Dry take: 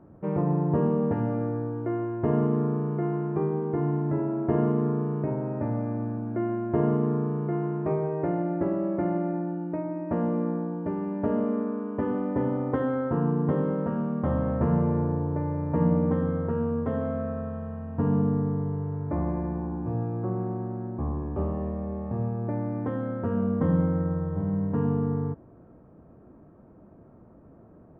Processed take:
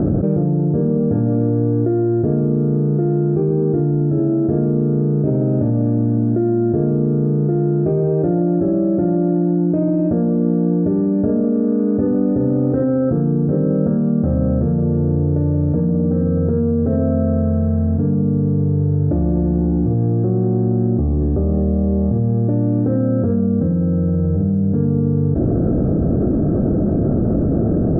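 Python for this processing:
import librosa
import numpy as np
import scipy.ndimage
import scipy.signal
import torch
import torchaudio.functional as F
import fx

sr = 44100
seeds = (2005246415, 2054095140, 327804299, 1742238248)

p1 = 10.0 ** (-22.5 / 20.0) * np.tanh(x / 10.0 ** (-22.5 / 20.0))
p2 = x + (p1 * 10.0 ** (-7.0 / 20.0))
p3 = np.convolve(p2, np.full(44, 1.0 / 44))[:len(p2)]
p4 = fx.env_flatten(p3, sr, amount_pct=100)
y = p4 * 10.0 ** (2.0 / 20.0)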